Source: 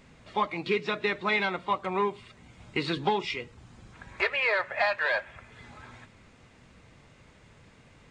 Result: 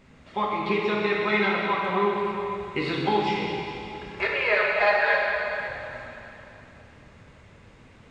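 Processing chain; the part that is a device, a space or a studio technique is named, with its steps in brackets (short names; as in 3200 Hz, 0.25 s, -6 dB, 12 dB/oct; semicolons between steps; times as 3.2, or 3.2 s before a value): swimming-pool hall (reverb RT60 3.3 s, pre-delay 10 ms, DRR -3 dB; high shelf 3700 Hz -6.5 dB); 4.5–5.68 comb 4.8 ms, depth 66%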